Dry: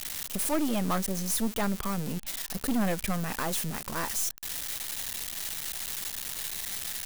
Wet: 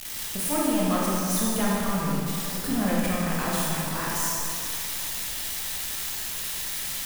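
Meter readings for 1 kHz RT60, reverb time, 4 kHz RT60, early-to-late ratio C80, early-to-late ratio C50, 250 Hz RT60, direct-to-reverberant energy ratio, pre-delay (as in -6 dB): 2.7 s, 2.7 s, 2.2 s, -1.5 dB, -3.0 dB, 2.7 s, -6.0 dB, 20 ms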